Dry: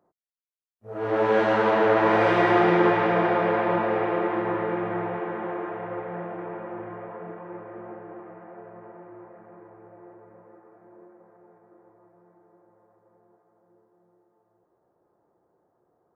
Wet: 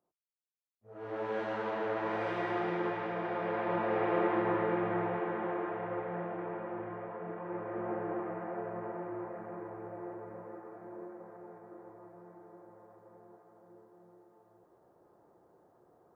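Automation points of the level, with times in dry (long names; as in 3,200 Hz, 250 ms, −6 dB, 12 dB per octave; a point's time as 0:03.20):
0:03.19 −14.5 dB
0:04.20 −4 dB
0:07.19 −4 dB
0:08.03 +5 dB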